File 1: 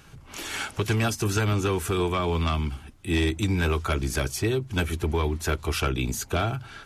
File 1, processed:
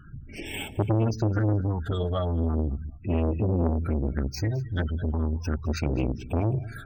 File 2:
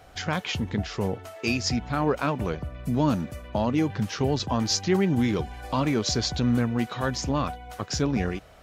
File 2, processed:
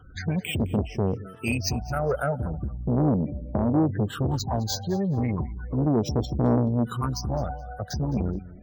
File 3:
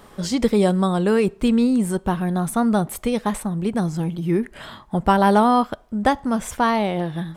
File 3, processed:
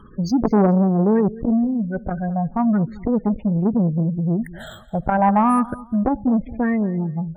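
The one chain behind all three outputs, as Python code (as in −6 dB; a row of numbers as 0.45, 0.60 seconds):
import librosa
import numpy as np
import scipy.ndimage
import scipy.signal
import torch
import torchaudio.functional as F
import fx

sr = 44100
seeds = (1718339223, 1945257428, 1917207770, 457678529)

p1 = np.clip(x, -10.0 ** (-13.0 / 20.0), 10.0 ** (-13.0 / 20.0))
p2 = x + (p1 * 10.0 ** (-9.0 / 20.0))
p3 = fx.high_shelf(p2, sr, hz=5600.0, db=10.0)
p4 = fx.phaser_stages(p3, sr, stages=8, low_hz=290.0, high_hz=1400.0, hz=0.36, feedback_pct=25)
p5 = fx.tilt_shelf(p4, sr, db=4.0, hz=1300.0)
p6 = np.repeat(scipy.signal.resample_poly(p5, 1, 4), 4)[:len(p5)]
p7 = fx.spec_gate(p6, sr, threshold_db=-20, keep='strong')
p8 = fx.echo_feedback(p7, sr, ms=212, feedback_pct=24, wet_db=-19.5)
p9 = fx.transformer_sat(p8, sr, knee_hz=470.0)
y = p9 * 10.0 ** (-1.0 / 20.0)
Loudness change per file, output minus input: −1.0, 0.0, +0.5 LU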